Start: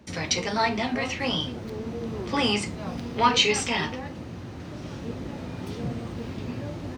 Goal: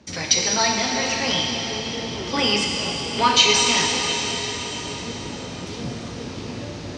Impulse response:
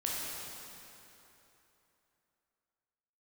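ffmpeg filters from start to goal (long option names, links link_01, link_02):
-filter_complex "[0:a]lowpass=frequency=5800:width_type=q:width=1.7,asplit=2[link_01][link_02];[link_02]highshelf=frequency=4300:gain=10.5[link_03];[1:a]atrim=start_sample=2205,asetrate=22050,aresample=44100,lowshelf=frequency=140:gain=-11[link_04];[link_03][link_04]afir=irnorm=-1:irlink=0,volume=-8dB[link_05];[link_01][link_05]amix=inputs=2:normalize=0,volume=-2.5dB"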